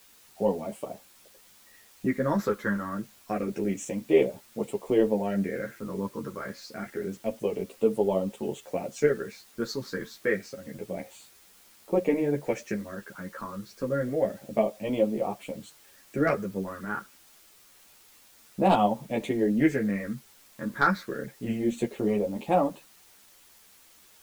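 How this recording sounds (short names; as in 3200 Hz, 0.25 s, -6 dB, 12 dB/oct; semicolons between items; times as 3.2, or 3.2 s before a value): phasing stages 6, 0.28 Hz, lowest notch 710–1600 Hz; a quantiser's noise floor 10-bit, dither triangular; a shimmering, thickened sound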